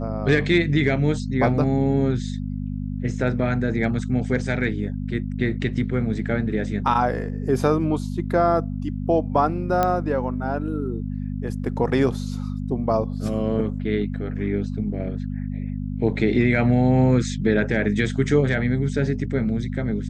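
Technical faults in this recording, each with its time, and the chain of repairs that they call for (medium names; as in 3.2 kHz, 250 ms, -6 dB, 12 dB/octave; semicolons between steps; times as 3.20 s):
hum 50 Hz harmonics 5 -28 dBFS
9.83 s: pop -8 dBFS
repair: de-click; de-hum 50 Hz, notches 5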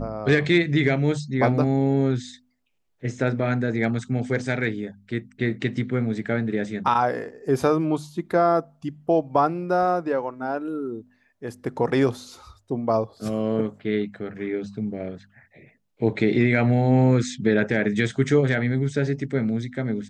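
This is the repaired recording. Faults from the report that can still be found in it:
nothing left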